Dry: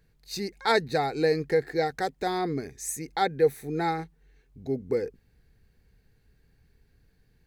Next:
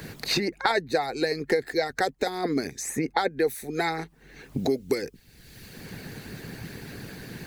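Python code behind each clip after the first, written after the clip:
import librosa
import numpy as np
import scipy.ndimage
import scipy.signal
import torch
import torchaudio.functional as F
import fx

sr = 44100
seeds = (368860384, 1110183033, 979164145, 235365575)

y = fx.hpss(x, sr, part='harmonic', gain_db=-14)
y = fx.band_squash(y, sr, depth_pct=100)
y = y * librosa.db_to_amplitude(5.5)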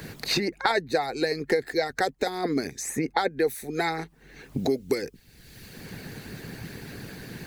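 y = x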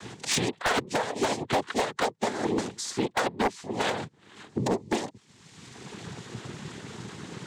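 y = fx.noise_vocoder(x, sr, seeds[0], bands=6)
y = 10.0 ** (-17.5 / 20.0) * (np.abs((y / 10.0 ** (-17.5 / 20.0) + 3.0) % 4.0 - 2.0) - 1.0)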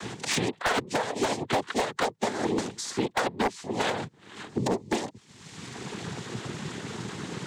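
y = fx.band_squash(x, sr, depth_pct=40)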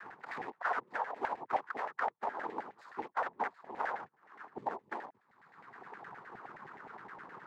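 y = scipy.ndimage.median_filter(x, 15, mode='constant')
y = fx.filter_lfo_bandpass(y, sr, shape='saw_down', hz=9.6, low_hz=760.0, high_hz=1900.0, q=3.6)
y = y * librosa.db_to_amplitude(1.5)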